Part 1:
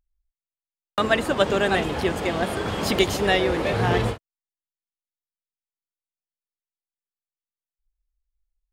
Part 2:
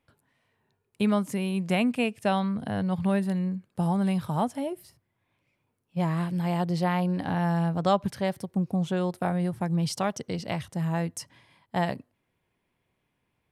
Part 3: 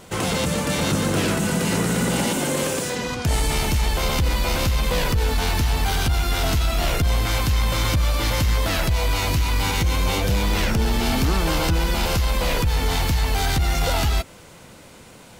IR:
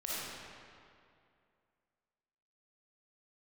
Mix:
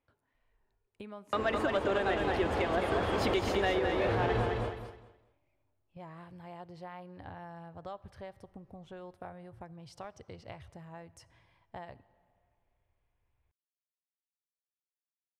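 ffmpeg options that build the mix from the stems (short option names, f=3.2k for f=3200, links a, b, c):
-filter_complex "[0:a]asoftclip=type=tanh:threshold=-11dB,adelay=350,volume=1dB,asplit=2[a][b];[b]volume=-5.5dB[c];[1:a]asubboost=boost=8.5:cutoff=73,acompressor=threshold=-35dB:ratio=4,volume=-6dB,asplit=2[d][e];[e]volume=-23dB[f];[3:a]atrim=start_sample=2205[g];[f][g]afir=irnorm=-1:irlink=0[h];[c]aecho=0:1:210|420|630|840:1|0.23|0.0529|0.0122[i];[a][d][h][i]amix=inputs=4:normalize=0,lowpass=f=1.9k:p=1,equalizer=f=170:w=1.4:g=-9,alimiter=limit=-20.5dB:level=0:latency=1:release=370"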